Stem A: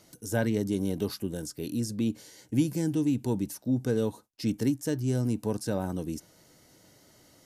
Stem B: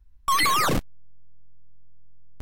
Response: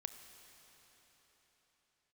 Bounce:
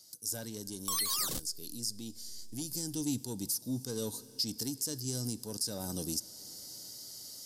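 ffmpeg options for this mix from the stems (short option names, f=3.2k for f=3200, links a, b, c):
-filter_complex "[0:a]equalizer=f=4.9k:w=5.8:g=10,asoftclip=type=tanh:threshold=-16.5dB,volume=-7.5dB,afade=t=in:st=2.66:d=0.58:silence=0.298538,asplit=3[a][b][c];[b]volume=-4.5dB[d];[1:a]acompressor=threshold=-24dB:ratio=6,adelay=600,volume=-4.5dB[e];[c]apad=whole_len=132937[f];[e][f]sidechaincompress=threshold=-53dB:ratio=8:attack=38:release=333[g];[2:a]atrim=start_sample=2205[h];[d][h]afir=irnorm=-1:irlink=0[i];[a][g][i]amix=inputs=3:normalize=0,aexciter=amount=5.3:drive=7.4:freq=3.5k,alimiter=limit=-22dB:level=0:latency=1:release=378"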